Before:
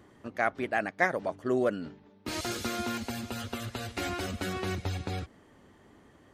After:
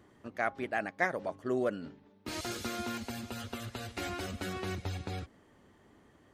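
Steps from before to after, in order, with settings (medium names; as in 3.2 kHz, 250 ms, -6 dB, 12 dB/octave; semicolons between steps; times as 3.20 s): de-hum 270.8 Hz, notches 4; trim -4 dB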